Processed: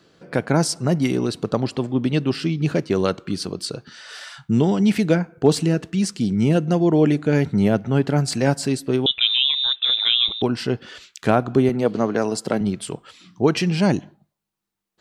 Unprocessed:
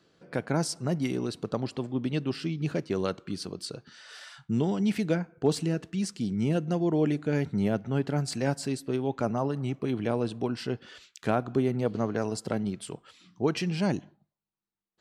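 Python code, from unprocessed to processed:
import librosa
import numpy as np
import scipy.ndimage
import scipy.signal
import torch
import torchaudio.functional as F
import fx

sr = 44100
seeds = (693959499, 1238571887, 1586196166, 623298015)

y = fx.freq_invert(x, sr, carrier_hz=3800, at=(9.06, 10.42))
y = fx.highpass(y, sr, hz=170.0, slope=12, at=(11.69, 12.61))
y = y * 10.0 ** (9.0 / 20.0)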